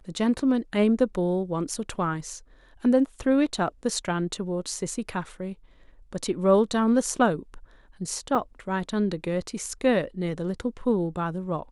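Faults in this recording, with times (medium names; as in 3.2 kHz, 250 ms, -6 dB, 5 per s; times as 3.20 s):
8.35 s: dropout 3.6 ms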